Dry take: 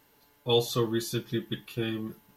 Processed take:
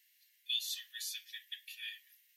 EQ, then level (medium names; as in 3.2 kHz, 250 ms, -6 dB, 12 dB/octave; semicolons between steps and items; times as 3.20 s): Chebyshev high-pass 1.8 kHz, order 6; -3.0 dB